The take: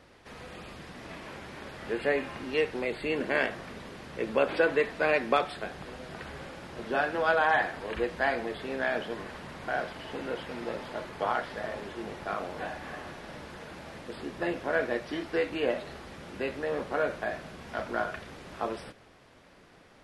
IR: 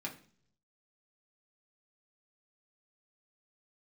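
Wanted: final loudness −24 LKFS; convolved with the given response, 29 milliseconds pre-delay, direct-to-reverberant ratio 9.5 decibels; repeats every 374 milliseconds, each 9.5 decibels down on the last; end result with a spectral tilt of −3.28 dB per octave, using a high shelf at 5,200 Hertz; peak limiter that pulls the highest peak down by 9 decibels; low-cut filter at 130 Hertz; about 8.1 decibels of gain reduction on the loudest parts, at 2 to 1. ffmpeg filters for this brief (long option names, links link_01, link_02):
-filter_complex "[0:a]highpass=130,highshelf=frequency=5200:gain=-5,acompressor=threshold=-35dB:ratio=2,alimiter=level_in=2.5dB:limit=-24dB:level=0:latency=1,volume=-2.5dB,aecho=1:1:374|748|1122|1496:0.335|0.111|0.0365|0.012,asplit=2[link_01][link_02];[1:a]atrim=start_sample=2205,adelay=29[link_03];[link_02][link_03]afir=irnorm=-1:irlink=0,volume=-10dB[link_04];[link_01][link_04]amix=inputs=2:normalize=0,volume=14.5dB"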